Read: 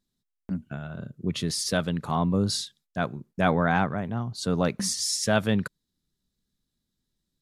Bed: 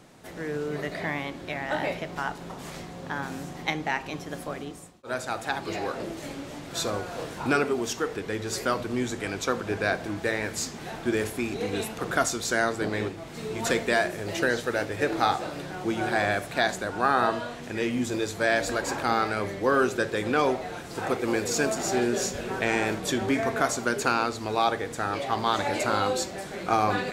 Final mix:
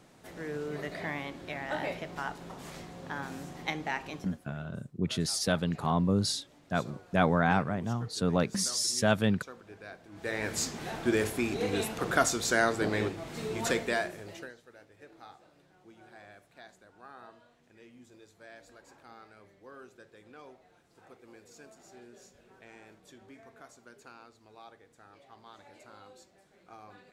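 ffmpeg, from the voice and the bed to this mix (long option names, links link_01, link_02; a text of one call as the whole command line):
ffmpeg -i stem1.wav -i stem2.wav -filter_complex "[0:a]adelay=3750,volume=-2.5dB[link_01];[1:a]volume=14dB,afade=type=out:start_time=4.1:duration=0.28:silence=0.177828,afade=type=in:start_time=10.11:duration=0.43:silence=0.105925,afade=type=out:start_time=13.37:duration=1.17:silence=0.0473151[link_02];[link_01][link_02]amix=inputs=2:normalize=0" out.wav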